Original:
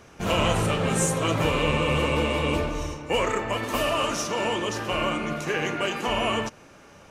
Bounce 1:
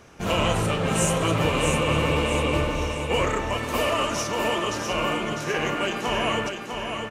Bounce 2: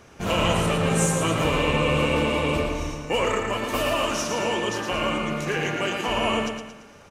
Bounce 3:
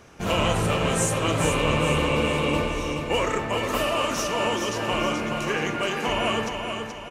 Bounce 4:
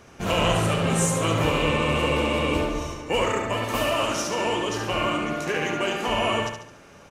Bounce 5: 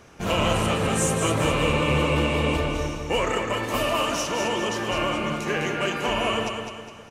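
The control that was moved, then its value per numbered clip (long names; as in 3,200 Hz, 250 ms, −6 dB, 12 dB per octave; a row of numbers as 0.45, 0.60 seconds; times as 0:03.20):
repeating echo, delay time: 651, 113, 427, 71, 205 milliseconds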